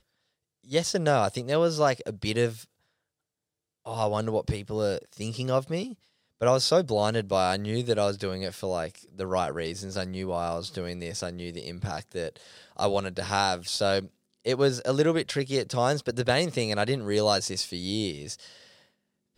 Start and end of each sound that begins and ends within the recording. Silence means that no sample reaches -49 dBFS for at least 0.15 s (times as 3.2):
0.64–2.65
3.85–5.95
6.41–14.1
14.41–18.82